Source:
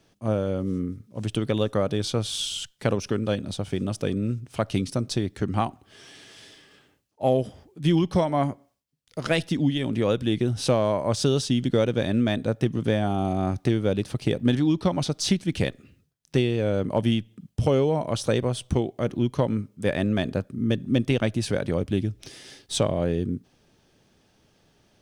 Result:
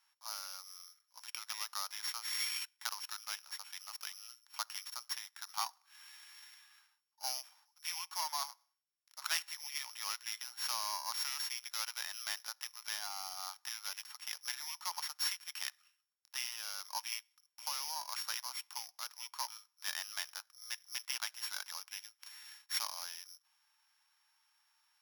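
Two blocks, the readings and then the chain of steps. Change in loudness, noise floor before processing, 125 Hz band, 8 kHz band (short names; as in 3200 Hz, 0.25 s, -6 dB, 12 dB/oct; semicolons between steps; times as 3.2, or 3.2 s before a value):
-14.0 dB, -64 dBFS, under -40 dB, -3.0 dB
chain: sample sorter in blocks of 8 samples; Chebyshev high-pass 890 Hz, order 5; gain -6.5 dB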